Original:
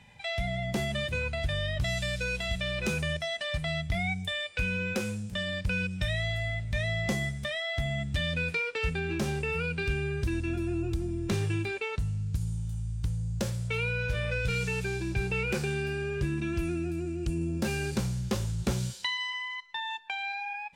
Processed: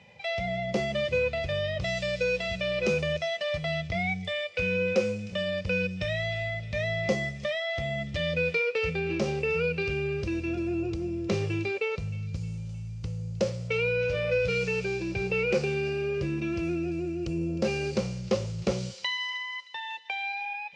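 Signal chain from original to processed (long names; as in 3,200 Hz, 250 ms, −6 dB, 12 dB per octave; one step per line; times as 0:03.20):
loudspeaker in its box 120–5,700 Hz, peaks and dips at 130 Hz −6 dB, 260 Hz −9 dB, 520 Hz +9 dB, 910 Hz −6 dB, 1,600 Hz −10 dB, 3,600 Hz −7 dB
delay with a high-pass on its return 310 ms, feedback 52%, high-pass 2,300 Hz, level −16 dB
level +4 dB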